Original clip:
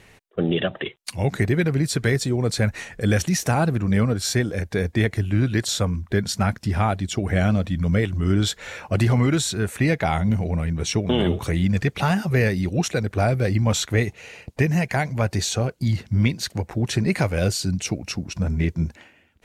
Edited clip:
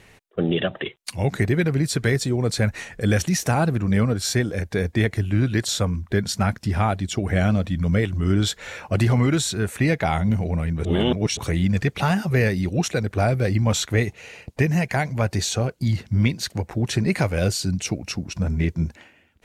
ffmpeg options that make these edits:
ffmpeg -i in.wav -filter_complex "[0:a]asplit=3[link_01][link_02][link_03];[link_01]atrim=end=10.852[link_04];[link_02]atrim=start=10.848:end=11.372,asetpts=PTS-STARTPTS,areverse[link_05];[link_03]atrim=start=11.368[link_06];[link_04][link_05]acrossfade=duration=0.004:curve1=hsin:curve2=hsin[link_07];[link_07][link_06]acrossfade=duration=0.004:curve1=hsin:curve2=hsin" out.wav

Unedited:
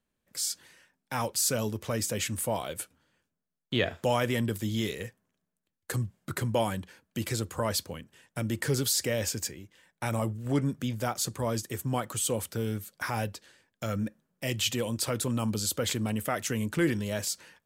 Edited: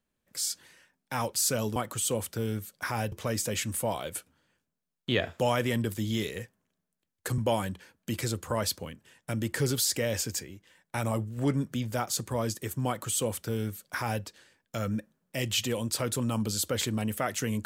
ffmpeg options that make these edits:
ffmpeg -i in.wav -filter_complex "[0:a]asplit=4[link_01][link_02][link_03][link_04];[link_01]atrim=end=1.762[link_05];[link_02]atrim=start=11.948:end=13.312[link_06];[link_03]atrim=start=1.758:end=6.022[link_07];[link_04]atrim=start=6.458[link_08];[link_05][link_06]acrossfade=duration=0.004:curve1=hsin:curve2=hsin[link_09];[link_09][link_07]acrossfade=duration=0.004:curve1=hsin:curve2=hsin[link_10];[link_10][link_08]acrossfade=duration=0.004:curve1=hsin:curve2=hsin" out.wav

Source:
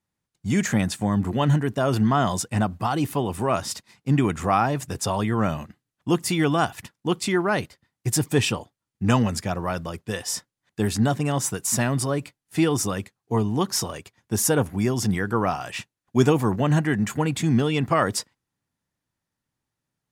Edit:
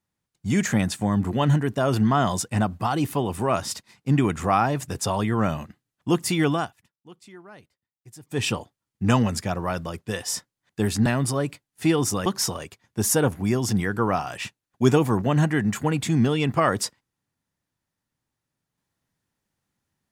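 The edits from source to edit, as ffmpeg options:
ffmpeg -i in.wav -filter_complex "[0:a]asplit=5[link_01][link_02][link_03][link_04][link_05];[link_01]atrim=end=6.73,asetpts=PTS-STARTPTS,afade=type=out:start_time=6.5:duration=0.23:silence=0.0707946[link_06];[link_02]atrim=start=6.73:end=8.27,asetpts=PTS-STARTPTS,volume=-23dB[link_07];[link_03]atrim=start=8.27:end=11.062,asetpts=PTS-STARTPTS,afade=type=in:duration=0.23:silence=0.0707946[link_08];[link_04]atrim=start=11.788:end=12.992[link_09];[link_05]atrim=start=13.598[link_10];[link_06][link_07][link_08]concat=n=3:v=0:a=1[link_11];[link_11][link_09]acrossfade=duration=0.004:curve1=hsin:curve2=hsin[link_12];[link_12][link_10]acrossfade=duration=0.004:curve1=hsin:curve2=hsin" out.wav

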